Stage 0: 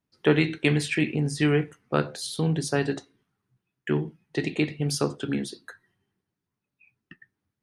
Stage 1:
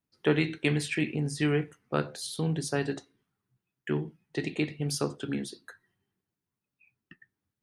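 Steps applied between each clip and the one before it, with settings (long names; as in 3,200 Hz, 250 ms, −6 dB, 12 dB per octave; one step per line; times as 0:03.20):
high-shelf EQ 11,000 Hz +5 dB
level −4.5 dB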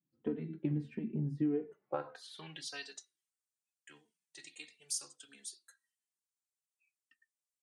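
band-pass filter sweep 220 Hz → 7,800 Hz, 0:01.38–0:03.06
downward compressor 6 to 1, threshold −35 dBFS, peak gain reduction 9 dB
barber-pole flanger 3.1 ms −1.6 Hz
level +6.5 dB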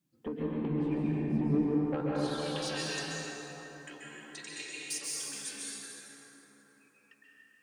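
downward compressor 1.5 to 1, threshold −55 dBFS, peak gain reduction 9.5 dB
sine wavefolder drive 5 dB, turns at −30 dBFS
convolution reverb RT60 4.5 s, pre-delay 123 ms, DRR −6.5 dB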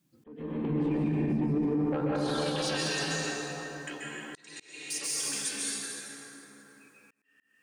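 brickwall limiter −29 dBFS, peak gain reduction 10.5 dB
volume swells 547 ms
level +7.5 dB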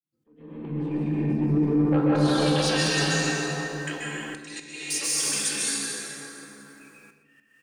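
fade in at the beginning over 2.35 s
single-tap delay 128 ms −16.5 dB
rectangular room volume 610 cubic metres, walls mixed, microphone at 0.69 metres
level +6 dB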